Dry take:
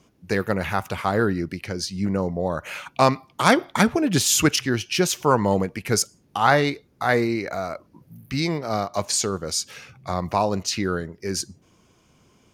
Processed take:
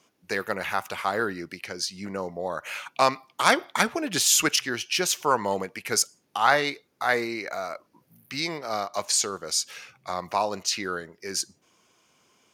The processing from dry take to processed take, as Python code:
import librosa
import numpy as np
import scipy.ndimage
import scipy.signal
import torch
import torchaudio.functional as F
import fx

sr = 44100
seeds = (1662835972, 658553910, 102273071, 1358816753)

y = fx.highpass(x, sr, hz=810.0, slope=6)